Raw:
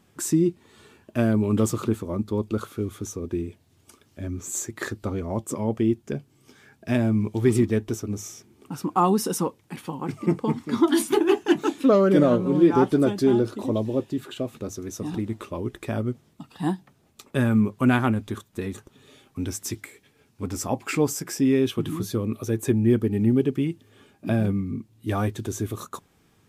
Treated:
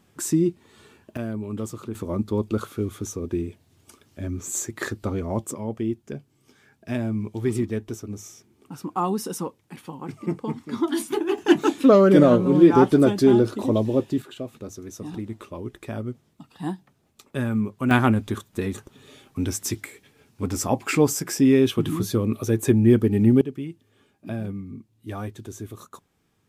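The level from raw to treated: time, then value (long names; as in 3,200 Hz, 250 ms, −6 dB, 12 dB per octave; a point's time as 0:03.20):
0 dB
from 0:01.17 −9 dB
from 0:01.95 +1.5 dB
from 0:05.51 −4.5 dB
from 0:11.38 +3.5 dB
from 0:14.22 −4 dB
from 0:17.91 +3.5 dB
from 0:23.41 −7.5 dB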